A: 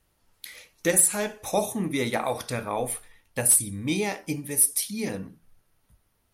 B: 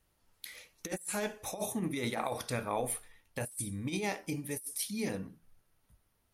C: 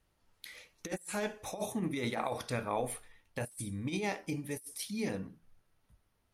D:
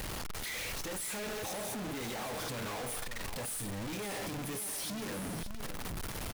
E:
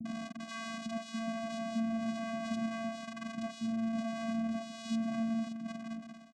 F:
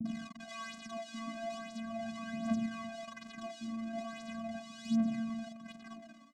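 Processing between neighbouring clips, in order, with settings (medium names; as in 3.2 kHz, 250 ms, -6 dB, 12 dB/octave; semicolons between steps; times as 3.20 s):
compressor with a negative ratio -27 dBFS, ratio -0.5; trim -7.5 dB
treble shelf 8.8 kHz -10.5 dB
one-bit comparator; on a send: delay 571 ms -10 dB
fade out at the end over 0.68 s; vocoder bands 4, square 226 Hz; bands offset in time lows, highs 50 ms, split 350 Hz; trim +5.5 dB
phaser 0.4 Hz, delay 3.6 ms, feedback 68%; trim -5 dB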